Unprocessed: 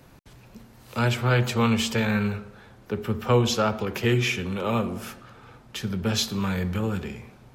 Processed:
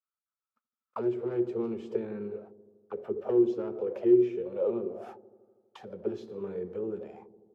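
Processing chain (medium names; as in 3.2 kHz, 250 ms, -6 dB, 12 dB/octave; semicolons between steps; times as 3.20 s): one-sided wavefolder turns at -16 dBFS; gate -39 dBFS, range -44 dB; treble shelf 4.8 kHz +4 dB; in parallel at +2 dB: compression, threshold -34 dBFS, peak gain reduction 17 dB; on the sum: auto-wah 360–1300 Hz, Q 12, down, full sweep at -18.5 dBFS; on a send: feedback echo behind a low-pass 81 ms, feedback 72%, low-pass 430 Hz, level -12 dB; on the sum: trim +5.5 dB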